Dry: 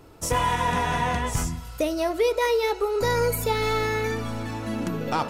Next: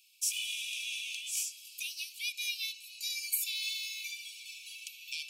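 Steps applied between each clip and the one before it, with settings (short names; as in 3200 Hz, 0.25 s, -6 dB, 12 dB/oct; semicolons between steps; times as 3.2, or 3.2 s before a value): Chebyshev high-pass 2300 Hz, order 10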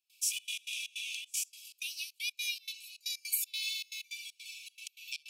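step gate ".xxx.x.xx" 157 bpm -24 dB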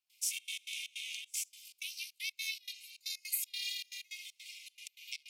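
ring modulator 200 Hz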